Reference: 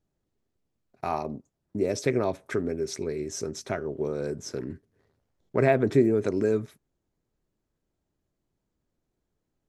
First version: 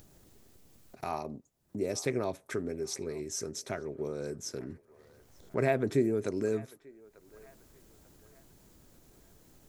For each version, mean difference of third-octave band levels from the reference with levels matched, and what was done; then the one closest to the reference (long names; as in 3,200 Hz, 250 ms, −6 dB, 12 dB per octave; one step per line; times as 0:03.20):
2.0 dB: high-shelf EQ 5,800 Hz +11.5 dB
upward compression, threshold −31 dBFS
feedback echo with a band-pass in the loop 892 ms, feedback 49%, band-pass 1,200 Hz, level −19 dB
level −6.5 dB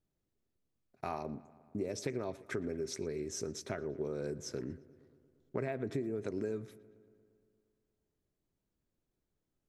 4.0 dB: parametric band 840 Hz −2.5 dB
downward compressor 10 to 1, threshold −27 dBFS, peak gain reduction 12.5 dB
on a send: feedback echo with a low-pass in the loop 116 ms, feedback 72%, low-pass 4,300 Hz, level −20.5 dB
on the sum: level −5.5 dB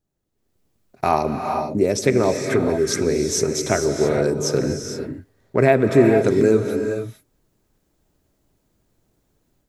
6.5 dB: high-shelf EQ 8,100 Hz +7 dB
automatic gain control gain up to 13 dB
reverb whose tail is shaped and stops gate 490 ms rising, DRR 4 dB
level −1 dB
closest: first